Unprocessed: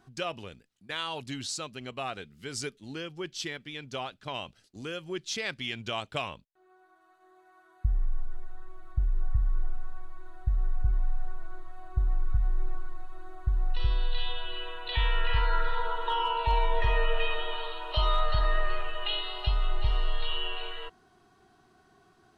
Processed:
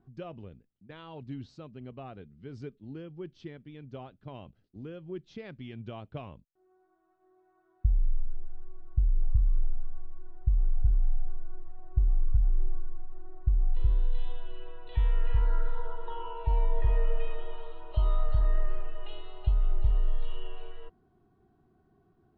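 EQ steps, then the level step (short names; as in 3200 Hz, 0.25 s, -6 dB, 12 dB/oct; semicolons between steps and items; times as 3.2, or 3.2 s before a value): LPF 5200 Hz; air absorption 130 m; tilt shelf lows +10 dB, about 670 Hz; -8.0 dB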